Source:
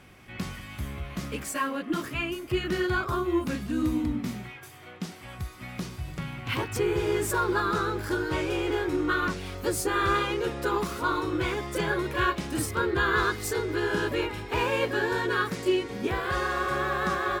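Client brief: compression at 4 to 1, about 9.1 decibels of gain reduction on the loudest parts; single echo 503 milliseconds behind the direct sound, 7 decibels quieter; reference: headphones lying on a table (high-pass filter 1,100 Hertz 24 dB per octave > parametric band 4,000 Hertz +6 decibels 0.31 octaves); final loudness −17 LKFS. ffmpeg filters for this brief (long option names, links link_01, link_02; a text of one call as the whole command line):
ffmpeg -i in.wav -af "acompressor=threshold=-32dB:ratio=4,highpass=frequency=1100:width=0.5412,highpass=frequency=1100:width=1.3066,equalizer=frequency=4000:width_type=o:width=0.31:gain=6,aecho=1:1:503:0.447,volume=21.5dB" out.wav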